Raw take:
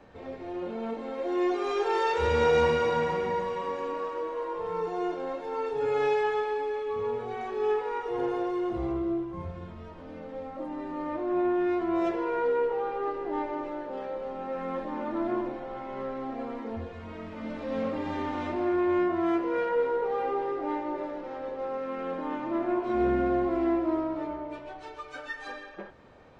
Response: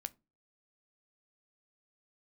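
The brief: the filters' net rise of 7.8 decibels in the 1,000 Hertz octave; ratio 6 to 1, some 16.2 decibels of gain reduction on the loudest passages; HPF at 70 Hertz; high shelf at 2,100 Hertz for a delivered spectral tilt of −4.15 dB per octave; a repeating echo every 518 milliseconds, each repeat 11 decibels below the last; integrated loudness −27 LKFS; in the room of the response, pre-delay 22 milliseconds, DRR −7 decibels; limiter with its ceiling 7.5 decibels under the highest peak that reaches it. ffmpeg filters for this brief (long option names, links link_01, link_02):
-filter_complex "[0:a]highpass=70,equalizer=frequency=1000:width_type=o:gain=8,highshelf=frequency=2100:gain=7,acompressor=threshold=-34dB:ratio=6,alimiter=level_in=8.5dB:limit=-24dB:level=0:latency=1,volume=-8.5dB,aecho=1:1:518|1036|1554:0.282|0.0789|0.0221,asplit=2[link_01][link_02];[1:a]atrim=start_sample=2205,adelay=22[link_03];[link_02][link_03]afir=irnorm=-1:irlink=0,volume=10dB[link_04];[link_01][link_04]amix=inputs=2:normalize=0,volume=5.5dB"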